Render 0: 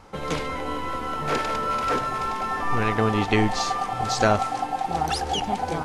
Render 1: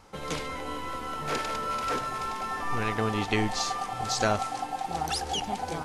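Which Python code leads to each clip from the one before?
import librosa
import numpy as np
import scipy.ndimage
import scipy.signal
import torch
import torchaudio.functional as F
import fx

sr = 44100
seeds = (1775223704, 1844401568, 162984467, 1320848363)

y = fx.high_shelf(x, sr, hz=3400.0, db=7.5)
y = F.gain(torch.from_numpy(y), -6.5).numpy()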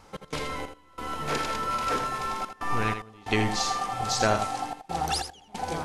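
y = fx.step_gate(x, sr, bpm=92, pattern='x.xx..xxxxxxxx', floor_db=-24.0, edge_ms=4.5)
y = y + 10.0 ** (-8.5 / 20.0) * np.pad(y, (int(82 * sr / 1000.0), 0))[:len(y)]
y = F.gain(torch.from_numpy(y), 1.5).numpy()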